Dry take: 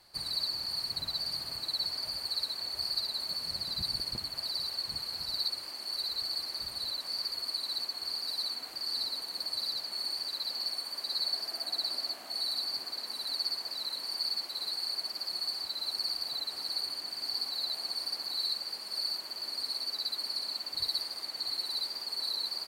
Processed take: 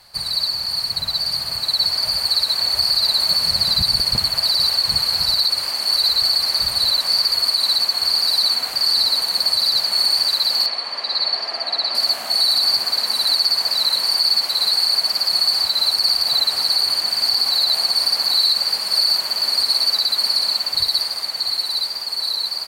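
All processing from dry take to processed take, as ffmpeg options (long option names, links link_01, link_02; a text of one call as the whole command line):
ffmpeg -i in.wav -filter_complex "[0:a]asettb=1/sr,asplit=3[link_01][link_02][link_03];[link_01]atrim=end=10.664[link_04];[link_02]atrim=start=10.66:end=11.95,asetpts=PTS-STARTPTS,afade=type=in:duration=0.004:curve=qsin,afade=type=out:start_time=1.286:duration=0.004:curve=qsin,highpass=240,lowpass=3200,bandreject=frequency=1500:width=13[link_05];[link_03]atrim=start=11.946[link_06];[link_04][link_05]acrossfade=duration=0.004:curve1=hsin:curve2=qsin[link_07];[link_07][link_06]acrossfade=duration=0.004:curve1=qsin:curve2=hsin,equalizer=frequency=320:width_type=o:width=0.78:gain=-10,dynaudnorm=framelen=130:gausssize=31:maxgain=6.5dB,alimiter=level_in=19dB:limit=-1dB:release=50:level=0:latency=1,volume=-7dB" out.wav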